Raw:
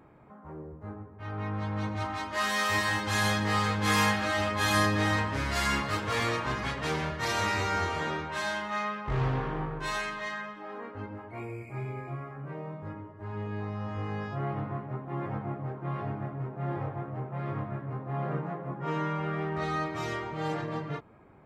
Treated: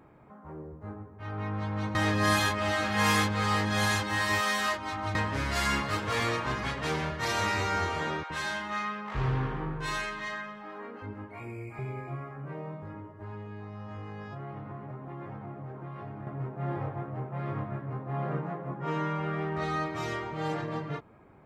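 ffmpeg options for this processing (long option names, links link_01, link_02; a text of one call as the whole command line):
ffmpeg -i in.wav -filter_complex "[0:a]asettb=1/sr,asplit=3[link_01][link_02][link_03];[link_01]atrim=end=8.234[link_04];[link_02]atrim=start=8.23:end=11.79,asetpts=PTS-STARTPTS,afade=type=in:duration=0.004:curve=qsin,afade=type=out:start_time=3.556:duration=0.004:curve=qsin,acrossover=split=620[link_05][link_06];[link_05]adelay=70[link_07];[link_07][link_06]amix=inputs=2:normalize=0,atrim=end_sample=156996[link_08];[link_03]atrim=start=11.786[link_09];[link_04][link_08]acrossfade=duration=0.004:curve1=hsin:curve2=qsin[link_10];[link_10][link_09]acrossfade=duration=0.004:curve1=qsin:curve2=hsin,asettb=1/sr,asplit=3[link_11][link_12][link_13];[link_11]atrim=end=12.804[link_14];[link_12]atrim=start=12.8:end=16.27,asetpts=PTS-STARTPTS,afade=type=in:duration=0.004:curve=qsin,afade=type=out:start_time=3.466:duration=0.004:curve=qsin,acompressor=threshold=-37dB:ratio=6:attack=3.2:release=140:knee=1:detection=peak[link_15];[link_13]atrim=start=16.266[link_16];[link_14][link_15]acrossfade=duration=0.004:curve1=hsin:curve2=qsin[link_17];[link_17][link_16]acrossfade=duration=0.004:curve1=qsin:curve2=hsin,asplit=3[link_18][link_19][link_20];[link_18]atrim=end=1.952[link_21];[link_19]atrim=start=1.948:end=5.152,asetpts=PTS-STARTPTS,areverse[link_22];[link_20]atrim=start=5.148[link_23];[link_21][link_22]acrossfade=duration=0.004:curve1=hsin:curve2=hsin[link_24];[link_24][link_23]acrossfade=duration=0.004:curve1=hsin:curve2=hsin" out.wav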